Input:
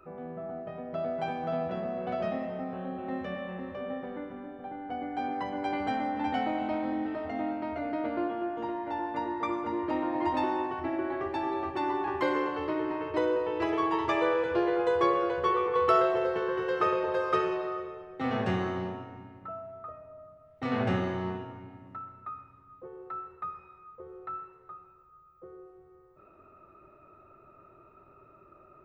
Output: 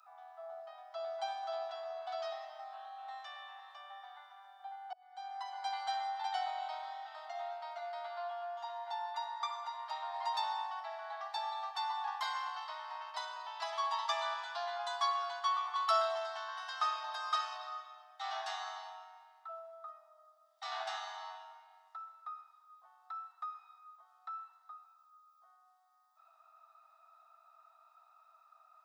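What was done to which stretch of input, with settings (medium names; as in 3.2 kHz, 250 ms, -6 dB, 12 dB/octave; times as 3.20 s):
4.93–5.60 s: fade in
whole clip: Chebyshev high-pass 670 Hz, order 8; resonant high shelf 3.2 kHz +8.5 dB, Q 3; band-stop 4.2 kHz, Q 9.6; trim -3.5 dB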